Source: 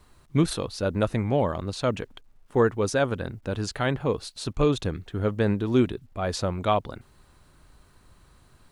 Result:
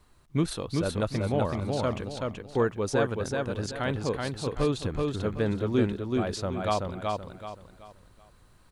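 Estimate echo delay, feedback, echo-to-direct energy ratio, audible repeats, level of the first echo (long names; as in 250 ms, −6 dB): 379 ms, 33%, −2.5 dB, 4, −3.0 dB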